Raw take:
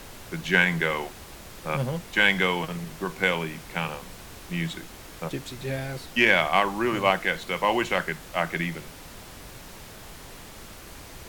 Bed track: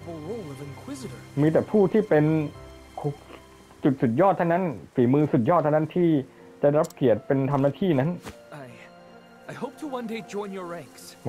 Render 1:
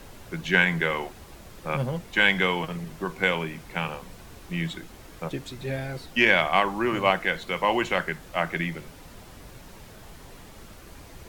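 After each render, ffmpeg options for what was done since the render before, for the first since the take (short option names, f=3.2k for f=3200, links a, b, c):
-af "afftdn=nr=6:nf=-44"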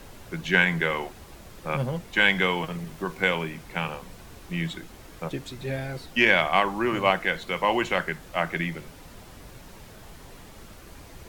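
-filter_complex "[0:a]asettb=1/sr,asplit=3[a][b][c];[a]atrim=end=2.354[d];[b]atrim=start=2.35:end=3.49,asetpts=PTS-STARTPTS,afade=t=in:d=0.004:c=qsin,afade=t=out:st=1.136:d=0.004:c=qsin,aeval=exprs='val(0)*gte(abs(val(0)),0.00422)':c=same[e];[c]atrim=start=3.486[f];[d][e]acrossfade=d=0.004:c1=hsin:c2=qsin[g];[g][f]acrossfade=d=0.004:c1=qsin:c2=hsin"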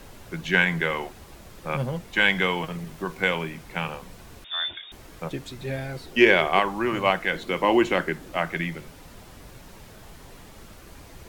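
-filter_complex "[0:a]asettb=1/sr,asplit=3[a][b][c];[a]atrim=end=4.444[d];[b]atrim=start=4.44:end=4.92,asetpts=PTS-STARTPTS,afade=t=in:d=0.004:c=qsin,afade=t=out:st=0.476:d=0.004:c=qsin,lowpass=f=3.1k:t=q:w=0.5098,lowpass=f=3.1k:t=q:w=0.6013,lowpass=f=3.1k:t=q:w=0.9,lowpass=f=3.1k:t=q:w=2.563,afreqshift=-3700[e];[c]atrim=start=4.916[f];[d][e]acrossfade=d=0.004:c1=hsin:c2=qsin[g];[g][f]acrossfade=d=0.004:c1=qsin:c2=hsin,asettb=1/sr,asplit=3[h][i][j];[h]atrim=end=6.064[k];[i]atrim=start=6.06:end=6.59,asetpts=PTS-STARTPTS,afade=t=in:d=0.004:c=qsin,afade=t=out:st=0.526:d=0.004:c=qsin,equalizer=f=400:t=o:w=0.45:g=14[l];[j]atrim=start=6.586[m];[k][l]acrossfade=d=0.004:c1=hsin:c2=qsin[n];[n][m]acrossfade=d=0.004:c1=qsin:c2=hsin,asettb=1/sr,asplit=3[o][p][q];[o]atrim=end=7.334[r];[p]atrim=start=7.33:end=8.37,asetpts=PTS-STARTPTS,afade=t=in:d=0.004:c=qsin,afade=t=out:st=1.036:d=0.004:c=qsin,equalizer=f=310:w=1.5:g=10[s];[q]atrim=start=8.366[t];[r][s]acrossfade=d=0.004:c1=hsin:c2=qsin[u];[u][t]acrossfade=d=0.004:c1=qsin:c2=hsin"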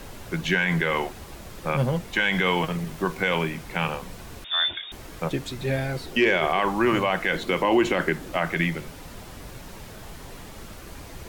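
-af "acontrast=23,alimiter=limit=-11.5dB:level=0:latency=1:release=40"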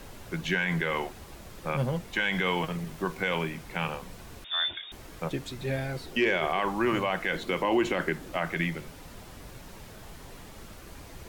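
-af "volume=-5dB"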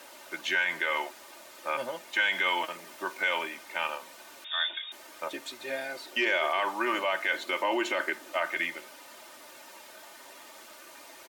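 -af "highpass=570,aecho=1:1:3.3:0.66"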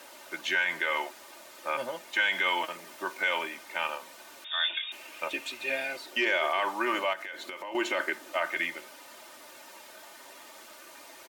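-filter_complex "[0:a]asettb=1/sr,asplit=3[a][b][c];[a]atrim=end=4.634[d];[b]atrim=start=4.63:end=5.97,asetpts=PTS-STARTPTS,afade=t=in:d=0.004:c=qsin,afade=t=out:st=1.336:d=0.004:c=qsin,equalizer=f=2.6k:w=3.5:g=13.5[e];[c]atrim=start=5.966[f];[d][e]acrossfade=d=0.004:c1=hsin:c2=qsin[g];[g][f]acrossfade=d=0.004:c1=qsin:c2=hsin,asettb=1/sr,asplit=3[h][i][j];[h]atrim=end=7.134[k];[i]atrim=start=7.13:end=7.75,asetpts=PTS-STARTPTS,afade=t=in:d=0.004:c=qsin,afade=t=out:st=0.616:d=0.004:c=qsin,acompressor=threshold=-36dB:ratio=6:attack=3.2:release=140:knee=1:detection=peak[l];[j]atrim=start=7.746[m];[k][l]acrossfade=d=0.004:c1=hsin:c2=qsin[n];[n][m]acrossfade=d=0.004:c1=qsin:c2=hsin"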